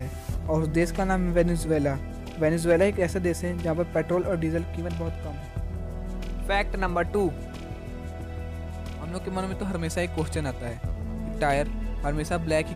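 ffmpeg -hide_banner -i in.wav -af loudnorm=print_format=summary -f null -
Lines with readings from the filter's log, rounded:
Input Integrated:    -28.2 LUFS
Input True Peak:     -11.6 dBTP
Input LRA:             6.0 LU
Input Threshold:     -38.2 LUFS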